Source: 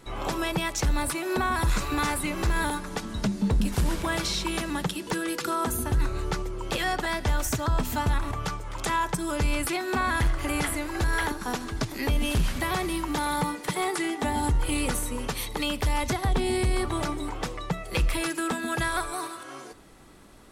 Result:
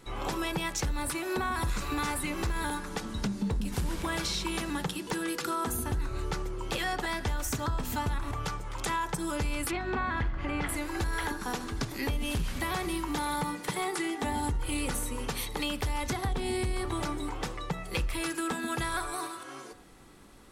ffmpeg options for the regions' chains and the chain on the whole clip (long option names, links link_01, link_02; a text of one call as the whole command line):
ffmpeg -i in.wav -filter_complex "[0:a]asettb=1/sr,asplit=3[link_01][link_02][link_03];[link_01]atrim=end=9.714[link_04];[link_02]atrim=start=9.71:end=10.69,asetpts=PTS-STARTPTS,afade=type=in:duration=0.004:curve=qsin,afade=type=out:start_time=0.976:duration=0.004:curve=qsin,lowpass=2900,aeval=exprs='val(0)+0.0178*(sin(2*PI*50*n/s)+sin(2*PI*2*50*n/s)/2+sin(2*PI*3*50*n/s)/3+sin(2*PI*4*50*n/s)/4+sin(2*PI*5*50*n/s)/5)':channel_layout=same[link_05];[link_03]atrim=start=10.686[link_06];[link_04][link_05]acrossfade=duration=0.004:curve1=hsin:curve2=qsin[link_07];[link_07][link_06]acrossfade=duration=0.004:curve1=qsin:curve2=hsin,bandreject=frequency=630:width=12,bandreject=frequency=60.9:width_type=h:width=4,bandreject=frequency=121.8:width_type=h:width=4,bandreject=frequency=182.7:width_type=h:width=4,bandreject=frequency=243.6:width_type=h:width=4,bandreject=frequency=304.5:width_type=h:width=4,bandreject=frequency=365.4:width_type=h:width=4,bandreject=frequency=426.3:width_type=h:width=4,bandreject=frequency=487.2:width_type=h:width=4,bandreject=frequency=548.1:width_type=h:width=4,bandreject=frequency=609:width_type=h:width=4,bandreject=frequency=669.9:width_type=h:width=4,bandreject=frequency=730.8:width_type=h:width=4,bandreject=frequency=791.7:width_type=h:width=4,bandreject=frequency=852.6:width_type=h:width=4,bandreject=frequency=913.5:width_type=h:width=4,bandreject=frequency=974.4:width_type=h:width=4,bandreject=frequency=1035.3:width_type=h:width=4,bandreject=frequency=1096.2:width_type=h:width=4,bandreject=frequency=1157.1:width_type=h:width=4,bandreject=frequency=1218:width_type=h:width=4,bandreject=frequency=1278.9:width_type=h:width=4,bandreject=frequency=1339.8:width_type=h:width=4,bandreject=frequency=1400.7:width_type=h:width=4,bandreject=frequency=1461.6:width_type=h:width=4,bandreject=frequency=1522.5:width_type=h:width=4,bandreject=frequency=1583.4:width_type=h:width=4,bandreject=frequency=1644.3:width_type=h:width=4,bandreject=frequency=1705.2:width_type=h:width=4,bandreject=frequency=1766.1:width_type=h:width=4,bandreject=frequency=1827:width_type=h:width=4,bandreject=frequency=1887.9:width_type=h:width=4,acompressor=threshold=-25dB:ratio=6,volume=-2dB" out.wav